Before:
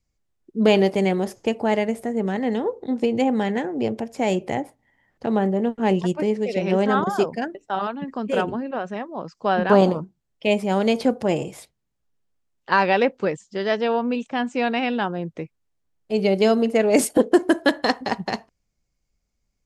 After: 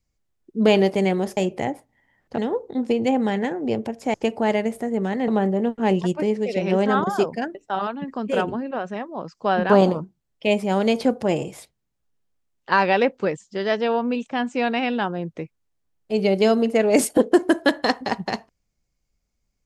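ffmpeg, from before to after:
-filter_complex "[0:a]asplit=5[s0][s1][s2][s3][s4];[s0]atrim=end=1.372[s5];[s1]atrim=start=4.268:end=5.282[s6];[s2]atrim=start=2.508:end=4.272[s7];[s3]atrim=start=1.368:end=2.512[s8];[s4]atrim=start=5.278[s9];[s5][s6]acrossfade=d=0.004:c1=hsin:c2=hsin[s10];[s10][s7]acrossfade=d=0.004:c1=hsin:c2=hsin[s11];[s11][s8]acrossfade=d=0.004:c1=hsin:c2=hsin[s12];[s12][s9]acrossfade=d=0.004:c1=hsin:c2=hsin"

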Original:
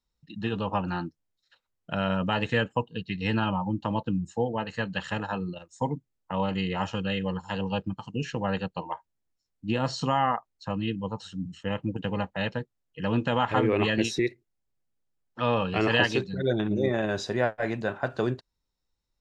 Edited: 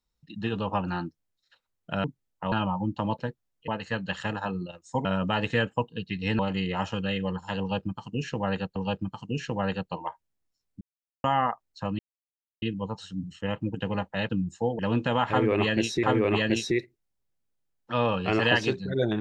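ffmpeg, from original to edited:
-filter_complex "[0:a]asplit=14[s0][s1][s2][s3][s4][s5][s6][s7][s8][s9][s10][s11][s12][s13];[s0]atrim=end=2.042[s14];[s1]atrim=start=5.918:end=6.402[s15];[s2]atrim=start=3.378:end=4.052[s16];[s3]atrim=start=12.508:end=13.002[s17];[s4]atrim=start=4.548:end=5.922[s18];[s5]atrim=start=2.038:end=3.382[s19];[s6]atrim=start=6.398:end=8.772[s20];[s7]atrim=start=7.608:end=9.66,asetpts=PTS-STARTPTS,afade=t=out:st=2.048:d=0.004:c=hsin[s21];[s8]atrim=start=9.66:end=10.09,asetpts=PTS-STARTPTS,volume=0[s22];[s9]atrim=start=10.09:end=10.84,asetpts=PTS-STARTPTS,afade=t=in:d=0.004:c=hsin,afade=t=out:st=0.746:d=0.004:c=hsin,apad=pad_dur=0.63[s23];[s10]atrim=start=10.84:end=12.512,asetpts=PTS-STARTPTS,afade=t=in:d=0.004:c=hsin[s24];[s11]atrim=start=4.048:end=4.552[s25];[s12]atrim=start=12.998:end=14.242[s26];[s13]atrim=start=13.508[s27];[s14][s15]acrossfade=d=0.004:c1=hsin:c2=hsin[s28];[s28][s16]acrossfade=d=0.004:c1=hsin:c2=hsin[s29];[s29][s17]acrossfade=d=0.004:c1=hsin:c2=hsin[s30];[s30][s18]acrossfade=d=0.004:c1=hsin:c2=hsin[s31];[s31][s19]acrossfade=d=0.004:c1=hsin:c2=hsin[s32];[s32][s20]acrossfade=d=0.004:c1=hsin:c2=hsin[s33];[s21][s22][s23][s24]concat=n=4:v=0:a=1[s34];[s33][s34]acrossfade=d=0.004:c1=hsin:c2=hsin[s35];[s35][s25]acrossfade=d=0.004:c1=hsin:c2=hsin[s36];[s36][s26]acrossfade=d=0.004:c1=hsin:c2=hsin[s37];[s37][s27]acrossfade=d=0.004:c1=hsin:c2=hsin"

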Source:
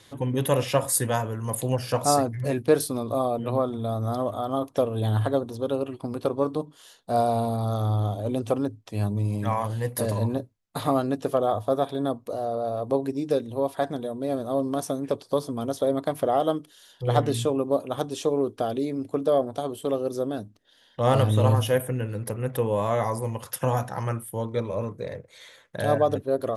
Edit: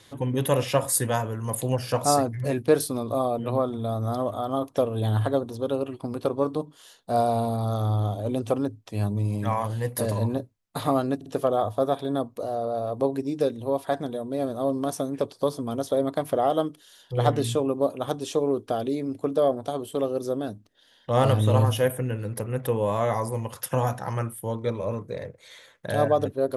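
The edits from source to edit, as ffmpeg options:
-filter_complex "[0:a]asplit=3[s0][s1][s2];[s0]atrim=end=11.212[s3];[s1]atrim=start=11.158:end=11.212[s4];[s2]atrim=start=11.158[s5];[s3][s4]acrossfade=d=0.004:c1=hsin:c2=hsin[s6];[s6][s5]acrossfade=d=0.004:c1=hsin:c2=hsin"

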